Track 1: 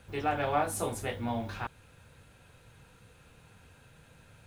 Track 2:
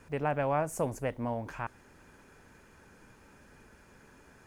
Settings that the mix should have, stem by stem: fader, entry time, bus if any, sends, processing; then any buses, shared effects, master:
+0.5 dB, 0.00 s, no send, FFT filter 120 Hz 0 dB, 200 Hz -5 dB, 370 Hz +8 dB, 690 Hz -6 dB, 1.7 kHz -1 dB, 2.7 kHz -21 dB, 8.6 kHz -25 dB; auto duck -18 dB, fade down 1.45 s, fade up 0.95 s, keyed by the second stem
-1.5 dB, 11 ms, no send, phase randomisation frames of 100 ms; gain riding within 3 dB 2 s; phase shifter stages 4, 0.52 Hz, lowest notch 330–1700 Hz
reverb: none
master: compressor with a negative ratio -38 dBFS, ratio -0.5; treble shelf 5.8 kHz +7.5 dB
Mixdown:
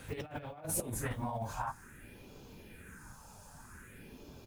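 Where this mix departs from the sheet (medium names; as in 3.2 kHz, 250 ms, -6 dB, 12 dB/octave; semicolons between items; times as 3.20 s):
stem 1: missing FFT filter 120 Hz 0 dB, 200 Hz -5 dB, 370 Hz +8 dB, 690 Hz -6 dB, 1.7 kHz -1 dB, 2.7 kHz -21 dB, 8.6 kHz -25 dB; stem 2: polarity flipped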